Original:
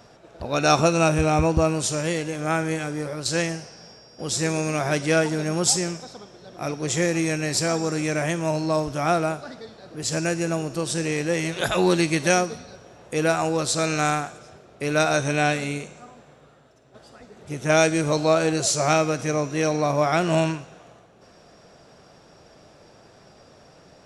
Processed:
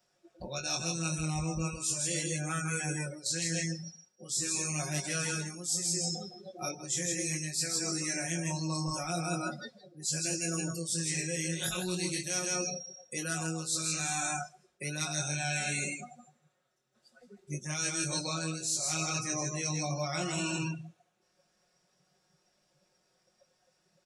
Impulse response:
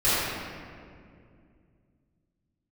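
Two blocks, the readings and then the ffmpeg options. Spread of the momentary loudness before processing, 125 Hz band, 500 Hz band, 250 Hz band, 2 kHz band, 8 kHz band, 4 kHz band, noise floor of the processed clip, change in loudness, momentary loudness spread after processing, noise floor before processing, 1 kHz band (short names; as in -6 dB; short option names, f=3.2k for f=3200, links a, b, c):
11 LU, -9.0 dB, -18.0 dB, -12.0 dB, -10.0 dB, -2.5 dB, -5.5 dB, -75 dBFS, -9.5 dB, 9 LU, -52 dBFS, -15.0 dB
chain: -filter_complex "[0:a]aecho=1:1:5.5:0.72,asplit=2[a][b];[b]aecho=0:1:161|322|483:0.531|0.0849|0.0136[c];[a][c]amix=inputs=2:normalize=0,crystalizer=i=4:c=0,flanger=delay=20:depth=5.2:speed=0.4,acrossover=split=280|3000[d][e][f];[e]acompressor=threshold=-38dB:ratio=1.5[g];[d][g][f]amix=inputs=3:normalize=0,afftdn=nr=26:nf=-32,equalizer=f=1.7k:w=1.5:g=3,areverse,acompressor=threshold=-30dB:ratio=12,areverse"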